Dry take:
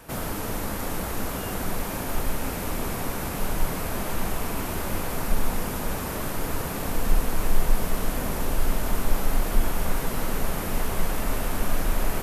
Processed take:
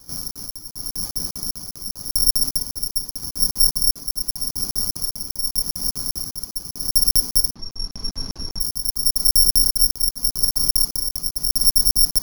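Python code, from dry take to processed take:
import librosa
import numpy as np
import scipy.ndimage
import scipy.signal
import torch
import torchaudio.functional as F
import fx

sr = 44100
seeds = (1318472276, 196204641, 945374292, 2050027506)

y = scipy.signal.medfilt(x, 25)
y = y * (1.0 - 0.8 / 2.0 + 0.8 / 2.0 * np.cos(2.0 * np.pi * 0.85 * (np.arange(len(y)) / sr)))
y = fx.echo_multitap(y, sr, ms=(41, 127, 209, 263, 676), db=(-5.0, -13.5, -17.5, -3.5, -8.0))
y = np.clip(y, -10.0 ** (-16.5 / 20.0), 10.0 ** (-16.5 / 20.0))
y = fx.peak_eq(y, sr, hz=570.0, db=-11.5, octaves=1.2)
y = (np.kron(scipy.signal.resample_poly(y, 1, 8), np.eye(8)[0]) * 8)[:len(y)]
y = fx.lowpass(y, sr, hz=3900.0, slope=12, at=(7.5, 8.6), fade=0.02)
y = fx.over_compress(y, sr, threshold_db=-18.0, ratio=-1.0, at=(10.97, 11.39))
y = fx.dereverb_blind(y, sr, rt60_s=0.56)
y = fx.buffer_crackle(y, sr, first_s=0.31, period_s=0.2, block=2048, kind='zero')
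y = y * librosa.db_to_amplitude(-3.0)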